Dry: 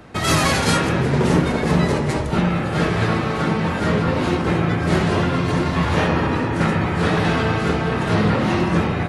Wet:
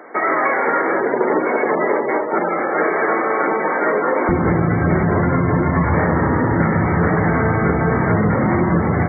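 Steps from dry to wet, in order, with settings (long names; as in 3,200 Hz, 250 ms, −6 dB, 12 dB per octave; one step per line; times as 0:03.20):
gate on every frequency bin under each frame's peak −25 dB strong
high-pass filter 340 Hz 24 dB per octave, from 0:04.29 54 Hz
downward compressor, threshold −20 dBFS, peak gain reduction 7 dB
linear-phase brick-wall low-pass 2,300 Hz
level +7.5 dB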